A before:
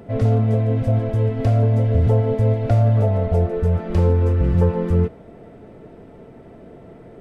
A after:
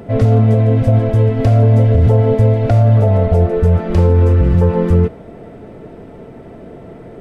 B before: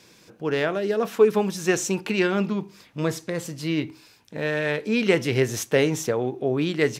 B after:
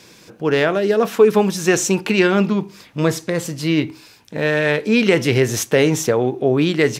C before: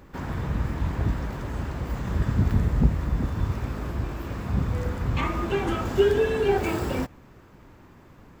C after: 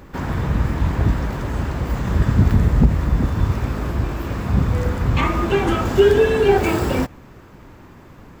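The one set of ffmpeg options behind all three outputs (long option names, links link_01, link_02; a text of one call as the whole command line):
ffmpeg -i in.wav -af "alimiter=level_in=10dB:limit=-1dB:release=50:level=0:latency=1,volume=-2.5dB" out.wav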